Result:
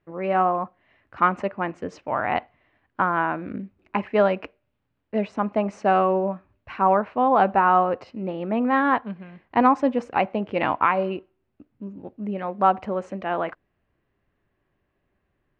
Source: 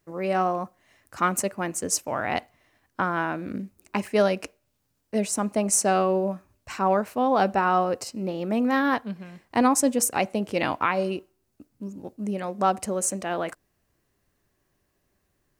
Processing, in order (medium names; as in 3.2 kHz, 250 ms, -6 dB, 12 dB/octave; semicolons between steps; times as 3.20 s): low-pass 3 kHz 24 dB/octave; dynamic bell 980 Hz, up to +6 dB, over -37 dBFS, Q 1.3